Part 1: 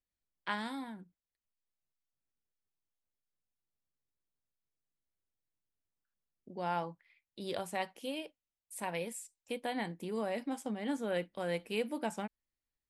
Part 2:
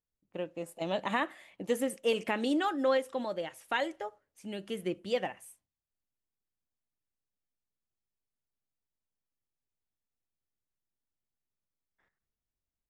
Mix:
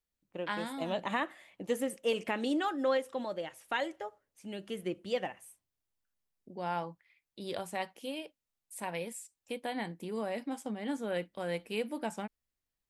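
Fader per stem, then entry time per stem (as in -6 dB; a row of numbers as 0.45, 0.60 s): 0.0, -2.0 dB; 0.00, 0.00 s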